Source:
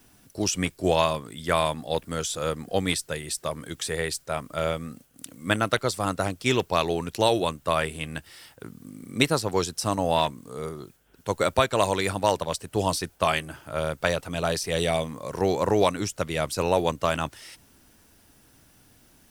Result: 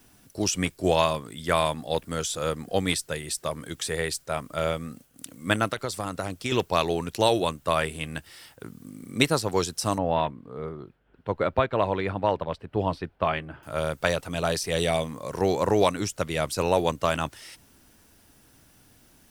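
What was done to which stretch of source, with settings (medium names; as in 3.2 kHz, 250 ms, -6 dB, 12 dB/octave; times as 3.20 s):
5.67–6.52 s: compression, threshold -24 dBFS
9.98–13.63 s: distance through air 420 m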